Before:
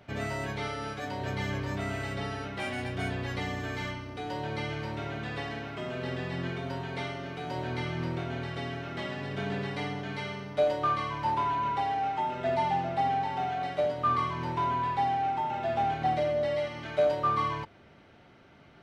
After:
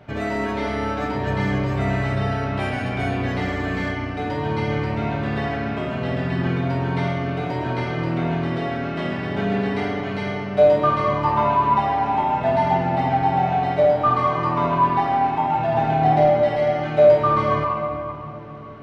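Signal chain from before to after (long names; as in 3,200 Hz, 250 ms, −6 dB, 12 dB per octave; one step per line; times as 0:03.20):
high-shelf EQ 2,700 Hz −9 dB
rectangular room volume 210 cubic metres, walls hard, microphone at 0.47 metres
level +8 dB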